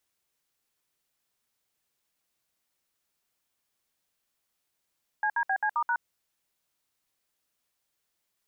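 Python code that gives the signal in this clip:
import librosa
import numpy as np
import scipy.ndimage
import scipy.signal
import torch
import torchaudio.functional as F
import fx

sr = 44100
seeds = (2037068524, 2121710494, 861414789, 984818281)

y = fx.dtmf(sr, digits='CDBC*#', tone_ms=69, gap_ms=63, level_db=-26.5)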